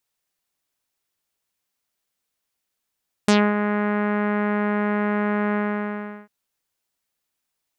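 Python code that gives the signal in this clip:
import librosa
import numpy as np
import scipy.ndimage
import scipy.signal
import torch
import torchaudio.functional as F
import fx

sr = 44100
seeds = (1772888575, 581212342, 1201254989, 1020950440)

y = fx.sub_voice(sr, note=56, wave='saw', cutoff_hz=1900.0, q=1.6, env_oct=2.5, env_s=0.13, attack_ms=3.9, decay_s=0.25, sustain_db=-8.0, release_s=0.74, note_s=2.26, slope=24)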